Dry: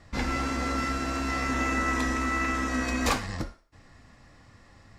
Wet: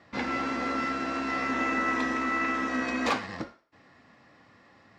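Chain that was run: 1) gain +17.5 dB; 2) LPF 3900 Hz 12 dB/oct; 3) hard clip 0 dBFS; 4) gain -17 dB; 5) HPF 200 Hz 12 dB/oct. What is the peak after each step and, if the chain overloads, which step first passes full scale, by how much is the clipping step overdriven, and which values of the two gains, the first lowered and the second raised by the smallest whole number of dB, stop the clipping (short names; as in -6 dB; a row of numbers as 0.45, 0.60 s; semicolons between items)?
+6.0, +5.5, 0.0, -17.0, -14.0 dBFS; step 1, 5.5 dB; step 1 +11.5 dB, step 4 -11 dB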